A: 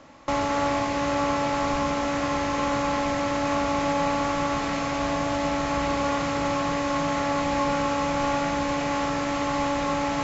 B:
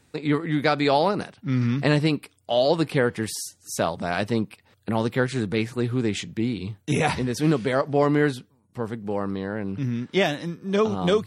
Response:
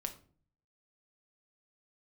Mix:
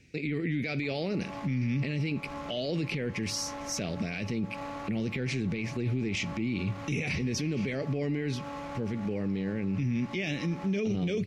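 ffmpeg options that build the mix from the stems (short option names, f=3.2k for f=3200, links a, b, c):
-filter_complex "[0:a]adynamicsmooth=sensitivity=6.5:basefreq=2.4k,adelay=550,volume=-13.5dB[a];[1:a]firequalizer=gain_entry='entry(210,0);entry(470,-5);entry(1000,-24);entry(2300,7);entry(3500,-7);entry(5700,1);entry(8300,-15)':delay=0.05:min_phase=1,alimiter=limit=-18.5dB:level=0:latency=1,volume=0.5dB,asplit=3[b][c][d];[c]volume=-8.5dB[e];[d]apad=whole_len=475546[f];[a][f]sidechaincompress=threshold=-35dB:ratio=8:attack=8.4:release=192[g];[2:a]atrim=start_sample=2205[h];[e][h]afir=irnorm=-1:irlink=0[i];[g][b][i]amix=inputs=3:normalize=0,alimiter=limit=-23dB:level=0:latency=1:release=15"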